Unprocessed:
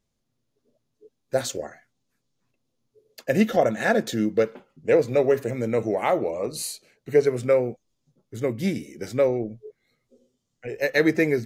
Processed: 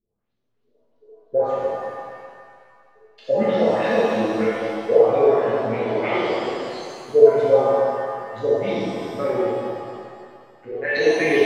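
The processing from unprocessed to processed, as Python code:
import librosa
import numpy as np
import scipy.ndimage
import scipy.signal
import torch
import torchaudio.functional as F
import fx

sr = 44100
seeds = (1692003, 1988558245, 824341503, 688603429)

y = fx.filter_lfo_lowpass(x, sr, shape='saw_up', hz=3.1, low_hz=290.0, high_hz=4500.0, q=4.0)
y = fx.rev_shimmer(y, sr, seeds[0], rt60_s=2.0, semitones=7, shimmer_db=-8, drr_db=-9.5)
y = y * 10.0 ** (-11.5 / 20.0)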